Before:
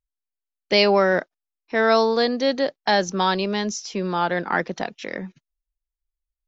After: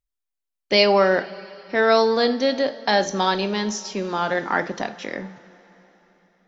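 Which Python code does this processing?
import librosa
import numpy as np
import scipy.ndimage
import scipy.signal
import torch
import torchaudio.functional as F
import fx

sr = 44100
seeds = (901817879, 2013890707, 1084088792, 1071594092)

y = fx.rev_double_slope(x, sr, seeds[0], early_s=0.39, late_s=3.9, knee_db=-18, drr_db=8.5)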